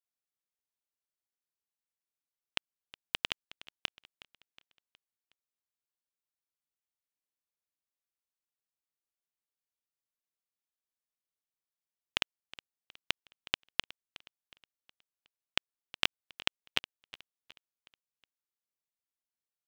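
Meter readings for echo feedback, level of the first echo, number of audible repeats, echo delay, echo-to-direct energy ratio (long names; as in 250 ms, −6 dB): 46%, −19.0 dB, 3, 366 ms, −18.0 dB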